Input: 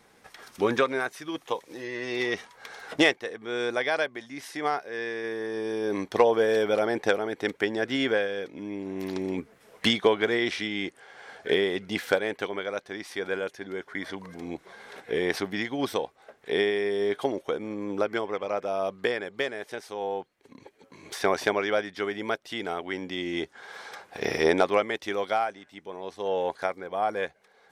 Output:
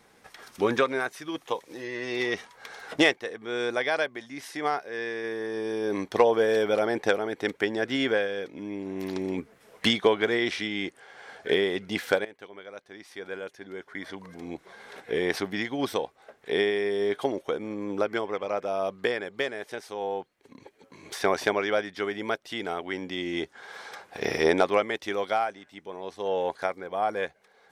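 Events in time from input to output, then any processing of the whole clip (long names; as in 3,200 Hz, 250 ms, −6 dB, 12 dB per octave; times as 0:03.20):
0:12.25–0:15.05: fade in, from −17 dB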